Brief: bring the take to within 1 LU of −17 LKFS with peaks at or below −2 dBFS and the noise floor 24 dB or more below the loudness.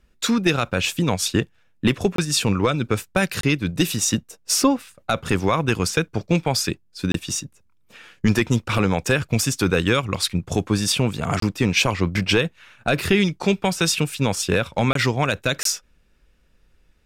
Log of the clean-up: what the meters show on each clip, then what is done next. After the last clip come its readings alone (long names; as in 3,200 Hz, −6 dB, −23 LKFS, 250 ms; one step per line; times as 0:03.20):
number of dropouts 6; longest dropout 23 ms; integrated loudness −21.5 LKFS; sample peak −7.0 dBFS; target loudness −17.0 LKFS
→ repair the gap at 0:02.16/0:03.41/0:07.12/0:11.40/0:14.93/0:15.63, 23 ms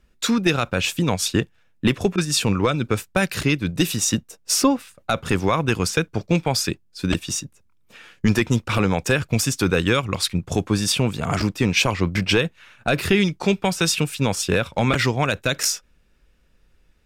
number of dropouts 0; integrated loudness −21.5 LKFS; sample peak −7.0 dBFS; target loudness −17.0 LKFS
→ level +4.5 dB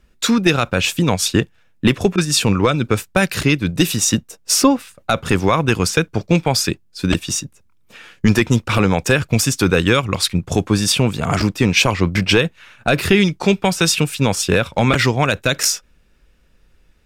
integrated loudness −17.0 LKFS; sample peak −2.5 dBFS; background noise floor −54 dBFS